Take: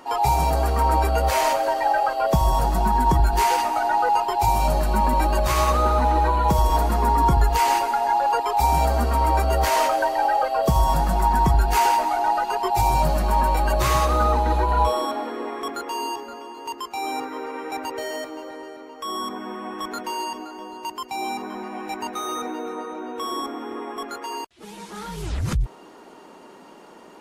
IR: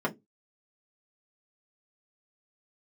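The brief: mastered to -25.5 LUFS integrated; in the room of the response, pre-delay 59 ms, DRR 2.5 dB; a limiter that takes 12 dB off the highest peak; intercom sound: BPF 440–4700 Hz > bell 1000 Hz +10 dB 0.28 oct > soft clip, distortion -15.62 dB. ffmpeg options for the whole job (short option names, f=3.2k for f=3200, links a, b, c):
-filter_complex "[0:a]alimiter=limit=-19.5dB:level=0:latency=1,asplit=2[a][b];[1:a]atrim=start_sample=2205,adelay=59[c];[b][c]afir=irnorm=-1:irlink=0,volume=-11.5dB[d];[a][d]amix=inputs=2:normalize=0,highpass=440,lowpass=4.7k,equalizer=f=1k:t=o:w=0.28:g=10,asoftclip=threshold=-16.5dB"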